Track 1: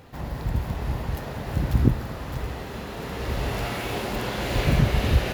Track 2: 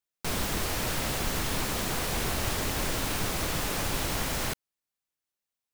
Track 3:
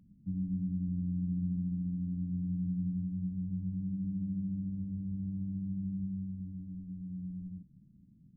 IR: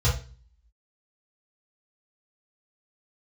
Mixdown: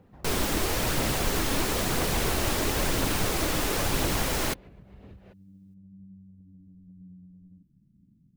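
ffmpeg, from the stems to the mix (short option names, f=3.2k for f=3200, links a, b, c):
-filter_complex "[0:a]lowpass=f=1.6k:p=1,acompressor=threshold=-23dB:ratio=6,volume=-13dB[a];[1:a]volume=2dB[b];[2:a]acompressor=threshold=-40dB:ratio=6,volume=-3.5dB[c];[a][c]amix=inputs=2:normalize=0,acompressor=threshold=-49dB:ratio=6,volume=0dB[d];[b][d]amix=inputs=2:normalize=0,aphaser=in_gain=1:out_gain=1:delay=3.8:decay=0.25:speed=0.99:type=triangular,equalizer=f=360:t=o:w=1.4:g=4"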